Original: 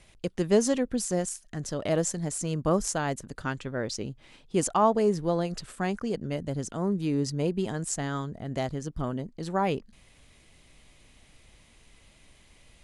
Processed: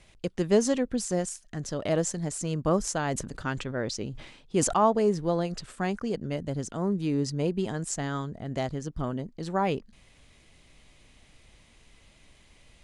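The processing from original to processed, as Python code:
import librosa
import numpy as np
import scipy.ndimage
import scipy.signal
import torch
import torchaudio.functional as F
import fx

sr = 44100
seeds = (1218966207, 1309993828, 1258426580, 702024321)

y = scipy.signal.sosfilt(scipy.signal.butter(2, 9200.0, 'lowpass', fs=sr, output='sos'), x)
y = fx.sustainer(y, sr, db_per_s=69.0, at=(3.07, 4.78))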